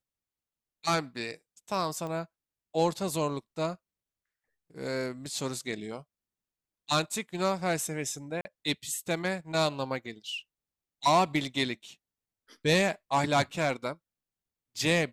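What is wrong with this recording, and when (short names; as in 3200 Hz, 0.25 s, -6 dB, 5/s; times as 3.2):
2.07 pop -26 dBFS
8.41–8.45 gap 40 ms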